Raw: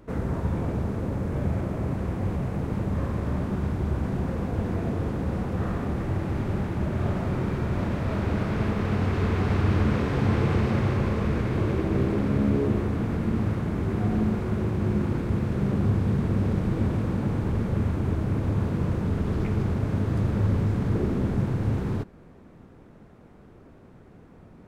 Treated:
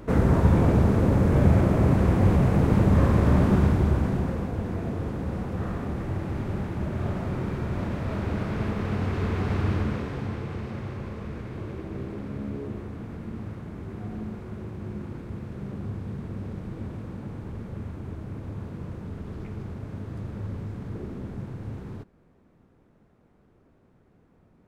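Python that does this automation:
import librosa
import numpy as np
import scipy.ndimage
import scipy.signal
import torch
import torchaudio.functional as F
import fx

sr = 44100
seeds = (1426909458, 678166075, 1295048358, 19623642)

y = fx.gain(x, sr, db=fx.line((3.56, 8.0), (4.58, -2.5), (9.68, -2.5), (10.44, -10.5)))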